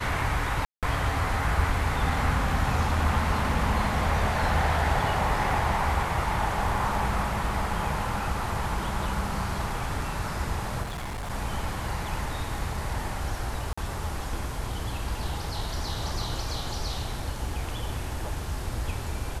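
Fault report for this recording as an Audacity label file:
0.650000	0.830000	drop-out 177 ms
10.820000	11.310000	clipping −31 dBFS
13.730000	13.780000	drop-out 45 ms

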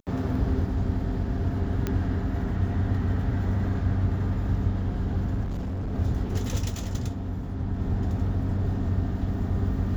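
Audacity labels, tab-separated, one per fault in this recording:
1.870000	1.870000	click −14 dBFS
5.430000	5.930000	clipping −27 dBFS

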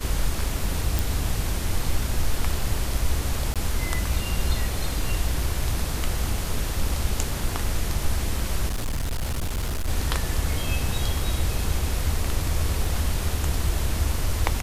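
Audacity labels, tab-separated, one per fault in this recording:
0.990000	0.990000	click
3.540000	3.560000	drop-out 17 ms
8.670000	9.890000	clipping −23 dBFS
12.850000	12.850000	drop-out 2.5 ms

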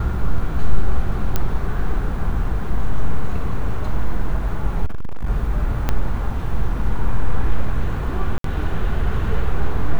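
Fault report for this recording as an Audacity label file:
1.360000	1.360000	click −5 dBFS
4.850000	5.300000	clipping −17.5 dBFS
5.890000	5.890000	click −6 dBFS
8.380000	8.440000	drop-out 63 ms

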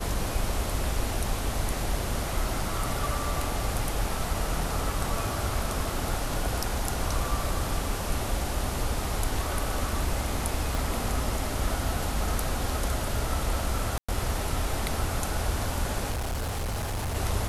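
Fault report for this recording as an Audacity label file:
10.750000	10.750000	click
13.980000	14.090000	drop-out 105 ms
16.100000	17.170000	clipping −27 dBFS

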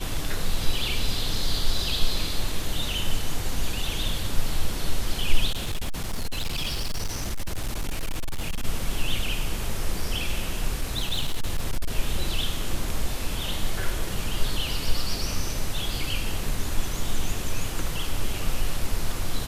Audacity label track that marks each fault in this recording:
5.500000	8.650000	clipping −23 dBFS
10.750000	11.910000	clipping −19.5 dBFS

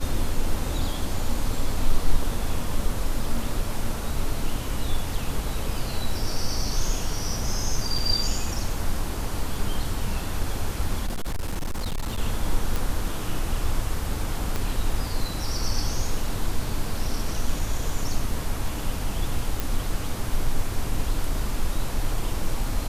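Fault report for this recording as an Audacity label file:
7.980000	7.980000	drop-out 4 ms
11.060000	12.180000	clipping −23.5 dBFS
12.760000	12.760000	click
14.560000	14.560000	click
19.600000	19.600000	click

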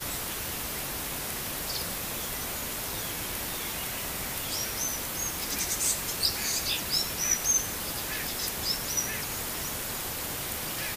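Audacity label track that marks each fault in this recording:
5.430000	5.430000	click

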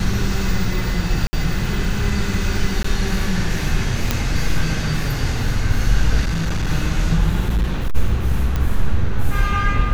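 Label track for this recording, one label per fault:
1.270000	1.330000	drop-out 60 ms
2.830000	2.840000	drop-out 14 ms
4.110000	4.110000	click −2 dBFS
6.210000	6.700000	clipping −16.5 dBFS
7.420000	7.960000	clipping −14 dBFS
8.560000	8.560000	click −9 dBFS

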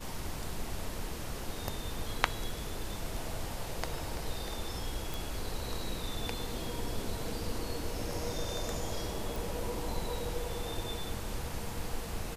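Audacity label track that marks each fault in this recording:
5.140000	5.140000	click
9.360000	9.360000	click

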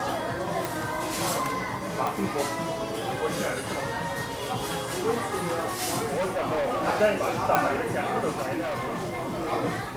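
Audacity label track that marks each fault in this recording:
0.650000	0.650000	click
2.070000	2.070000	click
6.070000	6.880000	clipping −23.5 dBFS
7.550000	7.550000	click −7 dBFS
8.600000	9.530000	clipping −27 dBFS

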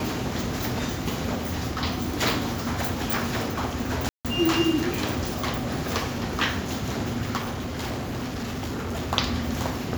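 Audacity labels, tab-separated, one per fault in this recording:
4.090000	4.250000	drop-out 157 ms
7.380000	9.130000	clipping −26.5 dBFS

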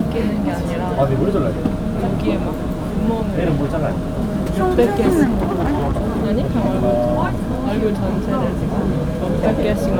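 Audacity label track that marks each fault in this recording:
5.240000	6.260000	clipping −14.5 dBFS

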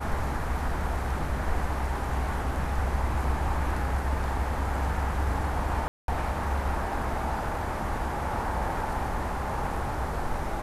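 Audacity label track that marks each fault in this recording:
5.880000	6.080000	drop-out 202 ms

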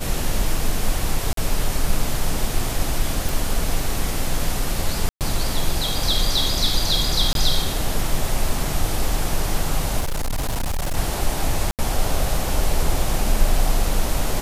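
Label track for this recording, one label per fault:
1.330000	1.370000	drop-out 43 ms
3.290000	3.290000	click
5.090000	5.210000	drop-out 118 ms
7.330000	7.350000	drop-out 22 ms
10.000000	10.970000	clipping −19.5 dBFS
11.710000	11.790000	drop-out 78 ms

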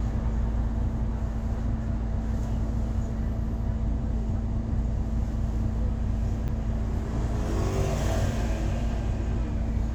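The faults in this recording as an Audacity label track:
6.480000	6.490000	drop-out 6.9 ms

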